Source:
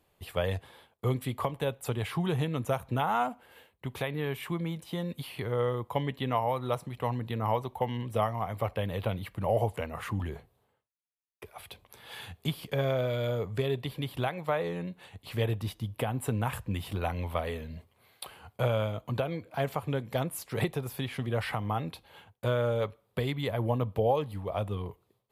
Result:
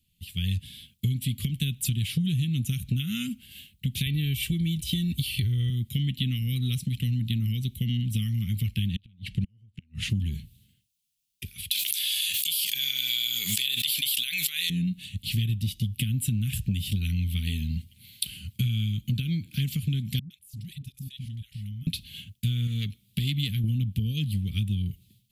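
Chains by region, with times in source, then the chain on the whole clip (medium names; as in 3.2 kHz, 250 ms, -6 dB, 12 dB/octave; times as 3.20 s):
4.06–5.70 s: peaking EQ 64 Hz +14 dB 1.2 oct + comb 2.6 ms, depth 51%
8.88–10.10 s: low-pass 6.3 kHz + inverted gate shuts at -23 dBFS, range -38 dB + tape noise reduction on one side only decoder only
11.71–14.70 s: high-pass 1.2 kHz + treble shelf 4.1 kHz +9 dB + level flattener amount 100%
20.19–21.87 s: amplifier tone stack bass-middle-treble 6-0-2 + level held to a coarse grid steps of 17 dB + phase dispersion highs, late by 115 ms, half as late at 510 Hz
22.67–23.64 s: bass shelf 130 Hz -6 dB + transformer saturation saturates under 710 Hz
whole clip: level rider gain up to 15 dB; elliptic band-stop 210–2900 Hz, stop band 80 dB; compression, threshold -26 dBFS; trim +2 dB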